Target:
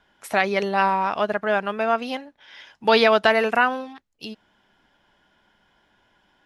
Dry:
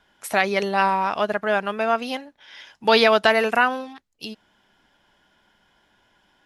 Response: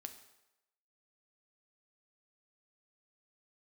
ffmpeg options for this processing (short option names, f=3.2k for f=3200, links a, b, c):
-af "highshelf=f=5.4k:g=-7.5"